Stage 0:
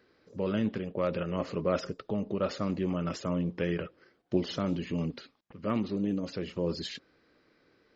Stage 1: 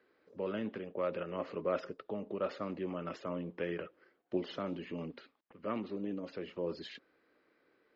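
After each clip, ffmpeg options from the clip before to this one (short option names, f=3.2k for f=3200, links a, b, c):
-filter_complex "[0:a]acrossover=split=250 3500:gain=0.224 1 0.141[a][b][c];[a][b][c]amix=inputs=3:normalize=0,volume=-4dB"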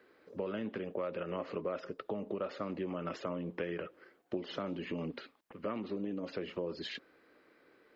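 -af "acompressor=threshold=-41dB:ratio=6,volume=7dB"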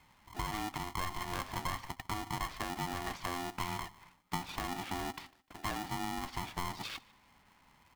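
-af "aecho=1:1:151|302:0.0668|0.0207,aeval=exprs='val(0)*sgn(sin(2*PI*530*n/s))':c=same"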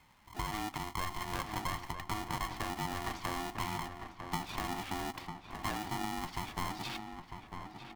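-filter_complex "[0:a]asplit=2[a][b];[b]adelay=950,lowpass=f=2.1k:p=1,volume=-7dB,asplit=2[c][d];[d]adelay=950,lowpass=f=2.1k:p=1,volume=0.48,asplit=2[e][f];[f]adelay=950,lowpass=f=2.1k:p=1,volume=0.48,asplit=2[g][h];[h]adelay=950,lowpass=f=2.1k:p=1,volume=0.48,asplit=2[i][j];[j]adelay=950,lowpass=f=2.1k:p=1,volume=0.48,asplit=2[k][l];[l]adelay=950,lowpass=f=2.1k:p=1,volume=0.48[m];[a][c][e][g][i][k][m]amix=inputs=7:normalize=0"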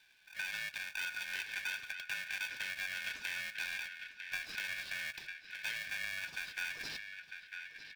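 -af "afftfilt=real='real(if(lt(b,272),68*(eq(floor(b/68),0)*3+eq(floor(b/68),1)*0+eq(floor(b/68),2)*1+eq(floor(b/68),3)*2)+mod(b,68),b),0)':imag='imag(if(lt(b,272),68*(eq(floor(b/68),0)*3+eq(floor(b/68),1)*0+eq(floor(b/68),2)*1+eq(floor(b/68),3)*2)+mod(b,68),b),0)':win_size=2048:overlap=0.75,asoftclip=type=tanh:threshold=-22.5dB,volume=-2.5dB"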